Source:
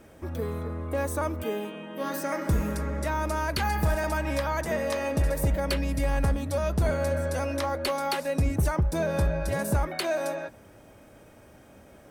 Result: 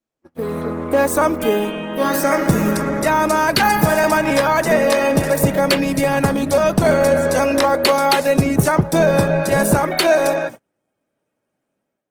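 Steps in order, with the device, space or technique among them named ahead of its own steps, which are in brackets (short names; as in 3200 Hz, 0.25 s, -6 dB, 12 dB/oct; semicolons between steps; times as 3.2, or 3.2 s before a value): video call (HPF 130 Hz 24 dB/oct; AGC gain up to 11.5 dB; gate -32 dBFS, range -36 dB; gain +2.5 dB; Opus 16 kbps 48000 Hz)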